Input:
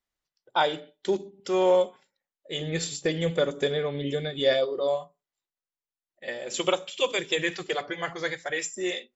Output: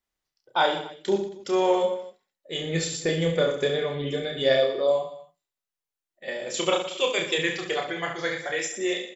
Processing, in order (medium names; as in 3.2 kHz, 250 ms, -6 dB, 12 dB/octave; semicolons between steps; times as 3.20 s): reverse bouncing-ball echo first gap 30 ms, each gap 1.3×, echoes 5